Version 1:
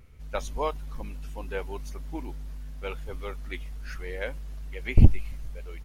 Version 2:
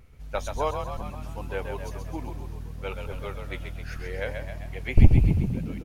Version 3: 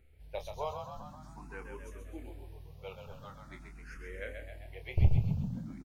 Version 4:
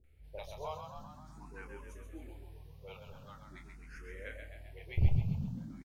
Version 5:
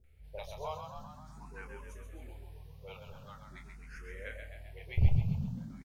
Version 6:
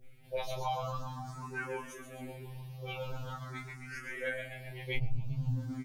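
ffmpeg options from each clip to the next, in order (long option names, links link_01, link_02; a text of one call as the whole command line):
ffmpeg -i in.wav -filter_complex "[0:a]equalizer=frequency=750:width_type=o:width=0.74:gain=3,asplit=2[link_01][link_02];[link_02]asplit=8[link_03][link_04][link_05][link_06][link_07][link_08][link_09][link_10];[link_03]adelay=131,afreqshift=39,volume=-6dB[link_11];[link_04]adelay=262,afreqshift=78,volume=-10.7dB[link_12];[link_05]adelay=393,afreqshift=117,volume=-15.5dB[link_13];[link_06]adelay=524,afreqshift=156,volume=-20.2dB[link_14];[link_07]adelay=655,afreqshift=195,volume=-24.9dB[link_15];[link_08]adelay=786,afreqshift=234,volume=-29.7dB[link_16];[link_09]adelay=917,afreqshift=273,volume=-34.4dB[link_17];[link_10]adelay=1048,afreqshift=312,volume=-39.1dB[link_18];[link_11][link_12][link_13][link_14][link_15][link_16][link_17][link_18]amix=inputs=8:normalize=0[link_19];[link_01][link_19]amix=inputs=2:normalize=0" out.wav
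ffmpeg -i in.wav -filter_complex "[0:a]asplit=2[link_01][link_02];[link_02]adelay=27,volume=-8.5dB[link_03];[link_01][link_03]amix=inputs=2:normalize=0,asplit=2[link_04][link_05];[link_05]afreqshift=0.45[link_06];[link_04][link_06]amix=inputs=2:normalize=1,volume=-8.5dB" out.wav
ffmpeg -i in.wav -filter_complex "[0:a]acrossover=split=590[link_01][link_02];[link_02]adelay=40[link_03];[link_01][link_03]amix=inputs=2:normalize=0,volume=-2.5dB" out.wav
ffmpeg -i in.wav -af "equalizer=frequency=310:width_type=o:width=0.36:gain=-10.5,volume=2dB" out.wav
ffmpeg -i in.wav -af "acompressor=threshold=-38dB:ratio=8,afftfilt=real='re*2.45*eq(mod(b,6),0)':imag='im*2.45*eq(mod(b,6),0)':win_size=2048:overlap=0.75,volume=11dB" out.wav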